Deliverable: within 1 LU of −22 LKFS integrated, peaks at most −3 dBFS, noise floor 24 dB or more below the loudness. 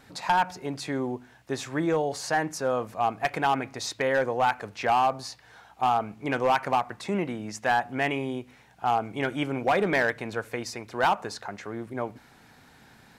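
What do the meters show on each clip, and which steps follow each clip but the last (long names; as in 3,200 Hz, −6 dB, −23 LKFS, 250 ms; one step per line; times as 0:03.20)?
share of clipped samples 1.0%; peaks flattened at −17.0 dBFS; integrated loudness −28.0 LKFS; sample peak −17.0 dBFS; target loudness −22.0 LKFS
→ clipped peaks rebuilt −17 dBFS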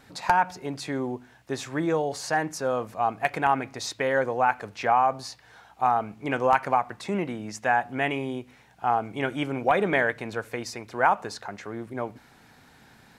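share of clipped samples 0.0%; integrated loudness −26.5 LKFS; sample peak −8.0 dBFS; target loudness −22.0 LKFS
→ level +4.5 dB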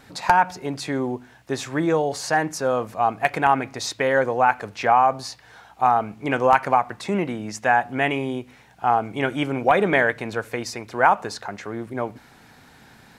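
integrated loudness −22.0 LKFS; sample peak −3.5 dBFS; background noise floor −51 dBFS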